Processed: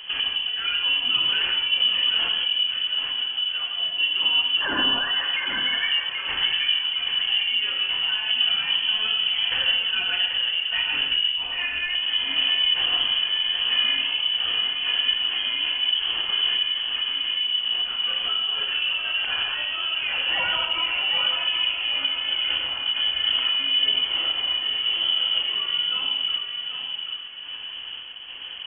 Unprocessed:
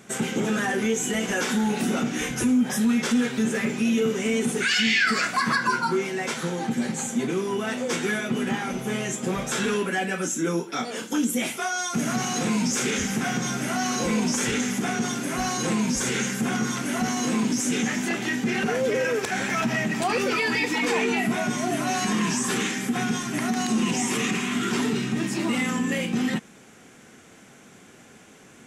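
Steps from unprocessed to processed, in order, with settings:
spectral tilt −3 dB per octave
downward compressor, threshold −30 dBFS, peak gain reduction 17 dB
sample-and-hold tremolo
on a send: tape delay 784 ms, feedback 42%, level −4.5 dB, low-pass 2,300 Hz
on the sum: reverb whose tail is shaped and stops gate 190 ms flat, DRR 3 dB
voice inversion scrambler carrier 3,200 Hz
level +7.5 dB

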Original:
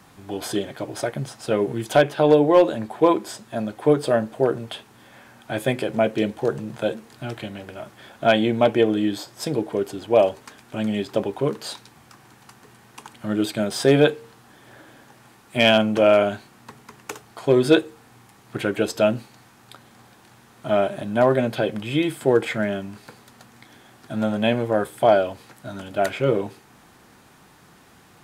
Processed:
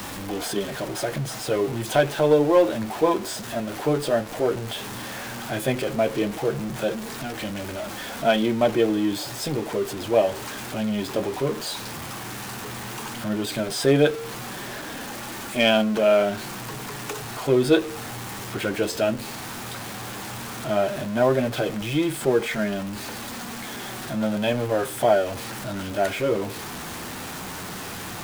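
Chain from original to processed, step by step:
converter with a step at zero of −25 dBFS
flanger 0.13 Hz, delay 3.2 ms, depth 9.2 ms, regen −49%

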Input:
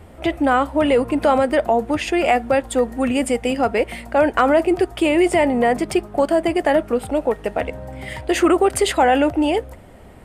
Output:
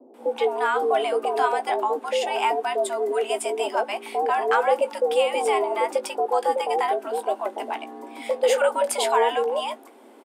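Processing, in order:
high-pass filter 100 Hz 12 dB per octave
parametric band 1,800 Hz −5 dB 0.84 octaves
double-tracking delay 18 ms −11 dB
multiband delay without the direct sound lows, highs 140 ms, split 570 Hz
frequency shifter +170 Hz
level −3.5 dB

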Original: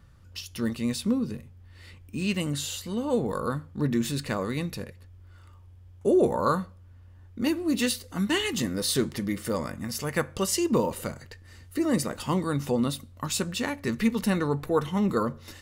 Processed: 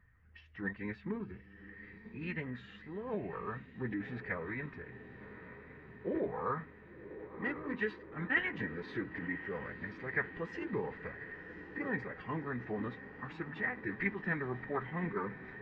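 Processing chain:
spectral magnitudes quantised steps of 15 dB
transistor ladder low-pass 2,000 Hz, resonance 80%
on a send: feedback delay with all-pass diffusion 1,085 ms, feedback 68%, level −13 dB
on the sum: phase-vocoder pitch shift with formants kept −2.5 semitones

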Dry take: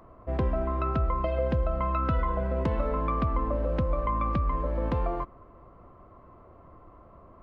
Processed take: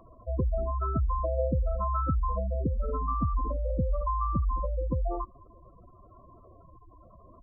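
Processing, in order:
gate on every frequency bin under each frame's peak −10 dB strong
0:02.49–0:03.70: dynamic equaliser 580 Hz, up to −6 dB, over −46 dBFS, Q 6.1

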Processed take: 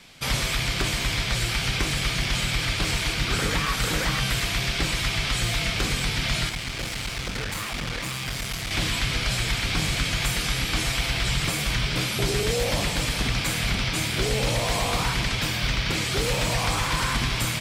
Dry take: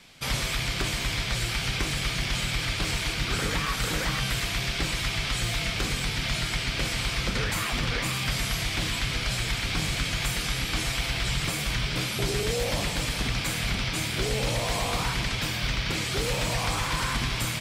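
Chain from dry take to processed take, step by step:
0:06.49–0:08.71: tube saturation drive 28 dB, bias 0.8
level +3 dB

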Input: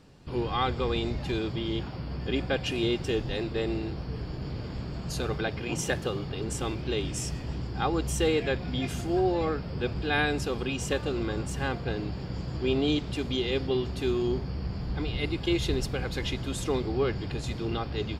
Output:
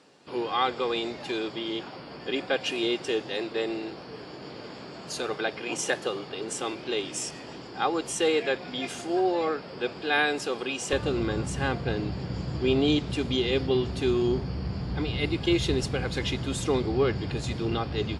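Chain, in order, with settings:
high-pass filter 350 Hz 12 dB per octave, from 0:10.93 69 Hz
level +3 dB
AAC 64 kbit/s 24,000 Hz

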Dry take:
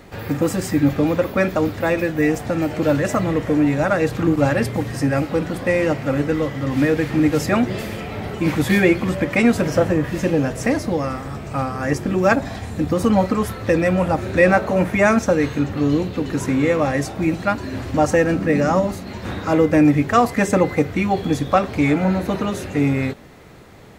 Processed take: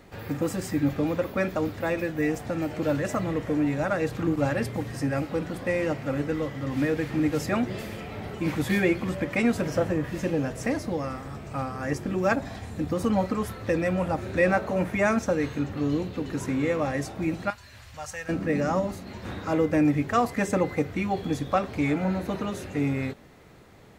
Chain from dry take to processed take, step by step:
0:17.50–0:18.29: guitar amp tone stack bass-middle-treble 10-0-10
level −8 dB

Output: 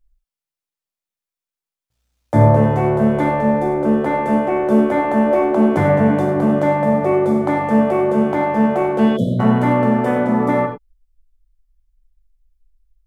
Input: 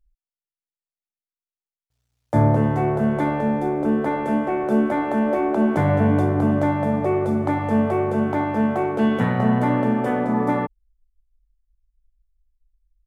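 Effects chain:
reverb whose tail is shaped and stops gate 120 ms flat, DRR 3 dB
time-frequency box erased 0:09.17–0:09.40, 710–3,000 Hz
level +3 dB

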